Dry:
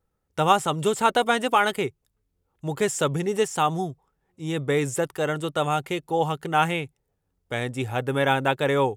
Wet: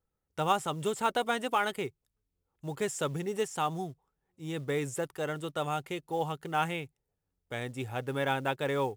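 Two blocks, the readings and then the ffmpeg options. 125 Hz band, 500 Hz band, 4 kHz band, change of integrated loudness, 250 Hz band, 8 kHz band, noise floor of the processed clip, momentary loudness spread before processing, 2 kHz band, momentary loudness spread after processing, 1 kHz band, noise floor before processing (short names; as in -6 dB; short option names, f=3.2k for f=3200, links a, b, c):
-8.5 dB, -8.5 dB, -8.5 dB, -8.5 dB, -8.5 dB, -8.5 dB, -85 dBFS, 10 LU, -8.5 dB, 10 LU, -8.5 dB, -76 dBFS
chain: -af "acrusher=bits=7:mode=log:mix=0:aa=0.000001,volume=-8.5dB"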